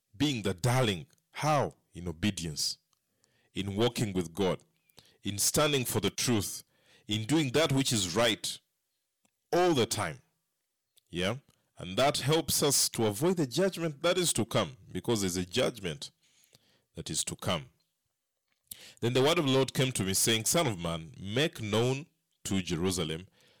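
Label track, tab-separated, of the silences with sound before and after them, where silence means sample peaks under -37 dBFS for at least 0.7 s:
2.730000	3.570000	silence
8.560000	9.530000	silence
10.140000	11.130000	silence
17.620000	18.710000	silence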